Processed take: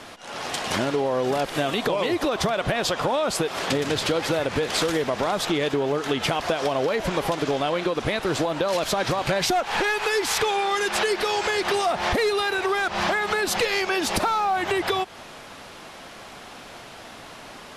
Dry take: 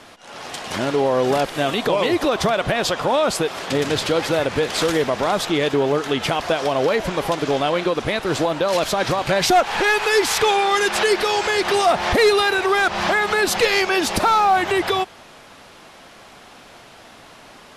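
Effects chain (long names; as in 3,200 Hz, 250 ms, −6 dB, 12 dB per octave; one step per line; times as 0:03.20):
downward compressor, threshold −23 dBFS, peak gain reduction 11 dB
level +2.5 dB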